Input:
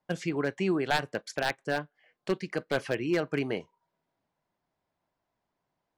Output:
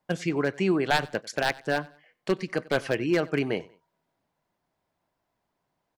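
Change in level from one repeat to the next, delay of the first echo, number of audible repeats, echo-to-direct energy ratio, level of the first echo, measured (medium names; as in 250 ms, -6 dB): -9.0 dB, 94 ms, 2, -21.5 dB, -22.0 dB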